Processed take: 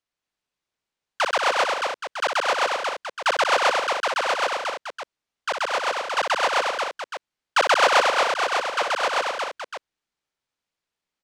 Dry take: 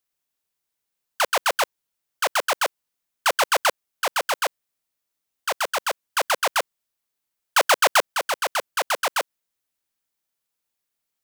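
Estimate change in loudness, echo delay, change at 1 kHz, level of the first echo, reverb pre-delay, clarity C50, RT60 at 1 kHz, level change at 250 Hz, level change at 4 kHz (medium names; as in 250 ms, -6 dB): +0.5 dB, 60 ms, +2.5 dB, -6.0 dB, no reverb, no reverb, no reverb, +2.5 dB, +0.5 dB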